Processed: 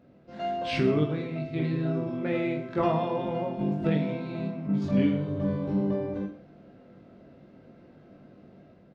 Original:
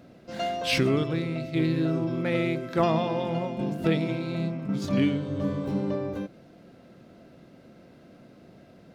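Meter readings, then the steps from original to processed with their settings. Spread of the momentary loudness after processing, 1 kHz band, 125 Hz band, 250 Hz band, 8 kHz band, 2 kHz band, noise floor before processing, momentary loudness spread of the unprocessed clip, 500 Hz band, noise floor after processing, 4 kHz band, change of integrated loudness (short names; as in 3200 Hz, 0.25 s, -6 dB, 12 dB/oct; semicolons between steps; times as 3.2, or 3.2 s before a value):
8 LU, -1.0 dB, -1.0 dB, -0.5 dB, n/a, -5.0 dB, -53 dBFS, 7 LU, -1.0 dB, -55 dBFS, -7.5 dB, -1.0 dB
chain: AGC gain up to 5 dB; tape spacing loss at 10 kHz 22 dB; on a send: reverse bouncing-ball echo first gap 20 ms, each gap 1.3×, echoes 5; on the sum: gain -7 dB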